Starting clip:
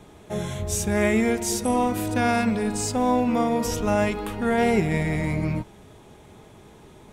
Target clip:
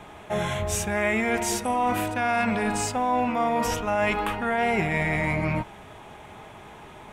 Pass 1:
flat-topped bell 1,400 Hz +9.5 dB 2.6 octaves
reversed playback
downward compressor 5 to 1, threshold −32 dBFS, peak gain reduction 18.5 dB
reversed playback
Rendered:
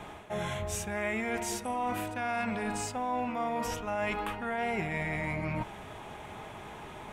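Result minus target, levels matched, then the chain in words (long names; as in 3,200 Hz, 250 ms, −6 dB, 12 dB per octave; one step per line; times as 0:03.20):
downward compressor: peak gain reduction +8.5 dB
flat-topped bell 1,400 Hz +9.5 dB 2.6 octaves
reversed playback
downward compressor 5 to 1, threshold −21.5 dBFS, peak gain reduction 10 dB
reversed playback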